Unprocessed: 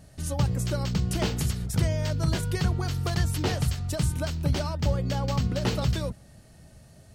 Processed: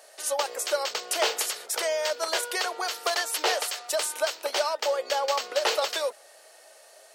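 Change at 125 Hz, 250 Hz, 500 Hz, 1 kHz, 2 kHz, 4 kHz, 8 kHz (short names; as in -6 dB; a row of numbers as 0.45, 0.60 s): under -40 dB, -18.0 dB, +6.0 dB, +7.5 dB, +7.5 dB, +7.5 dB, +7.5 dB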